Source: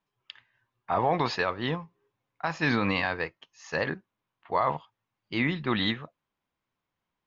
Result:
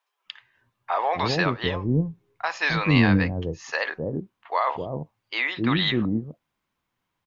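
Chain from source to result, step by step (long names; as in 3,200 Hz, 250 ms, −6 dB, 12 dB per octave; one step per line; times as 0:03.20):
0:01.36–0:03.72: low-shelf EQ 150 Hz +11.5 dB
multiband delay without the direct sound highs, lows 260 ms, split 520 Hz
dynamic equaliser 1,000 Hz, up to −3 dB, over −35 dBFS, Q 0.75
level +6 dB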